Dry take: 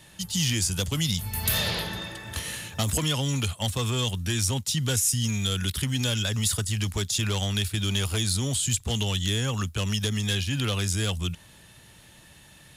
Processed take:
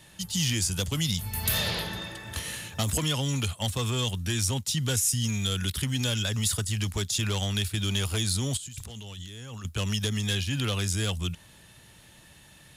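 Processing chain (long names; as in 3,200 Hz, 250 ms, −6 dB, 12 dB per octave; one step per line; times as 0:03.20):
0:08.57–0:09.65: compressor whose output falls as the input rises −39 dBFS, ratio −1
level −1.5 dB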